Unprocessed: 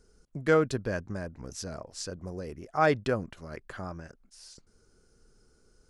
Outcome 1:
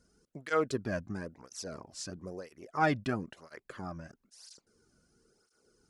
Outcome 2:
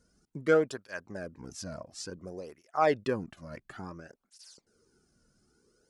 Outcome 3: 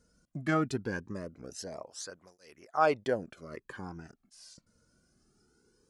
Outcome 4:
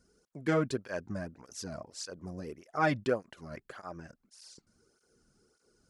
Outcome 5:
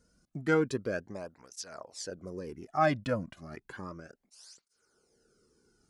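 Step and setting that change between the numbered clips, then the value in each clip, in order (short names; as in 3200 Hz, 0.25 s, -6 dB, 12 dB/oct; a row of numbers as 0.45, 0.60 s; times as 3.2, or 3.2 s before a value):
tape flanging out of phase, nulls at: 1, 0.57, 0.21, 1.7, 0.32 Hz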